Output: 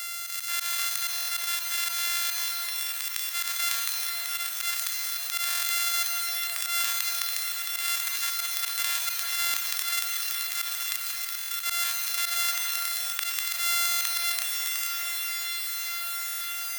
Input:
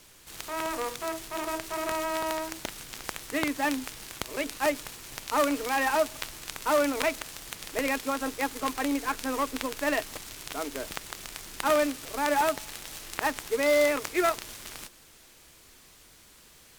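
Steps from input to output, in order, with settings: sample sorter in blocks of 64 samples; dynamic EQ 3600 Hz, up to +3 dB, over -49 dBFS, Q 5.9; HPF 1400 Hz 24 dB/oct; high shelf 6900 Hz +9 dB; diffused feedback echo 0.97 s, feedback 56%, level -15 dB; auto swell 0.144 s; reverb RT60 2.2 s, pre-delay 0.118 s, DRR 8.5 dB; stuck buffer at 1.15/5.49/9.4/11.37/13.87/16.27, samples 1024, times 5; fast leveller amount 70%; gain -2.5 dB

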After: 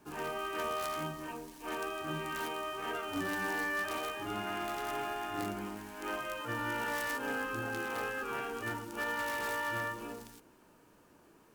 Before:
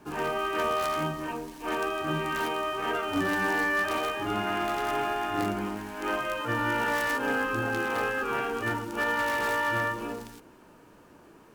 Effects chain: high shelf 4900 Hz +7 dB; gain -8.5 dB

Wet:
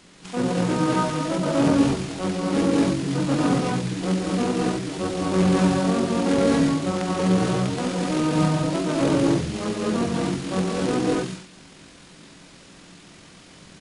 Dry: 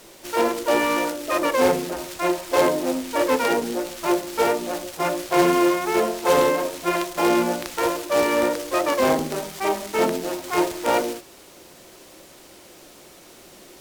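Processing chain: non-linear reverb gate 0.27 s rising, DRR -2.5 dB; pitch shift -11 st; gain -4 dB

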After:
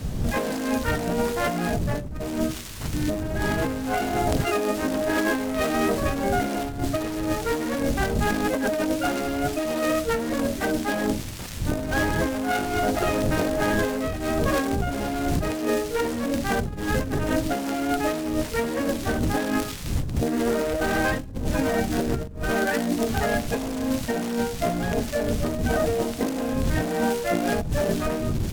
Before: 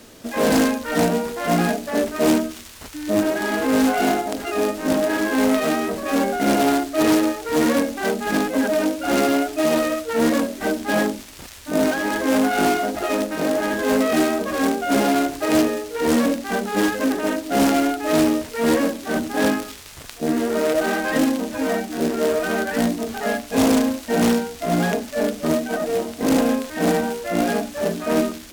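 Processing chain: wind noise 130 Hz -23 dBFS; negative-ratio compressor -23 dBFS, ratio -1; gain -2 dB

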